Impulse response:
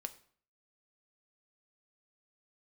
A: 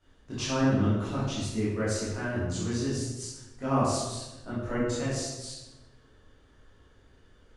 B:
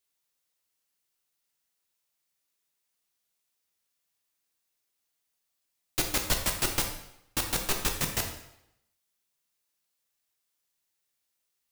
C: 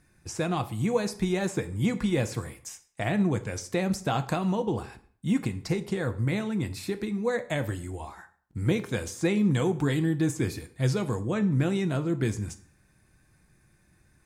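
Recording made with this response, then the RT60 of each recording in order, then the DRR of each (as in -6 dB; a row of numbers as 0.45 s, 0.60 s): C; 1.1 s, 0.80 s, 0.50 s; -11.0 dB, 3.0 dB, 9.0 dB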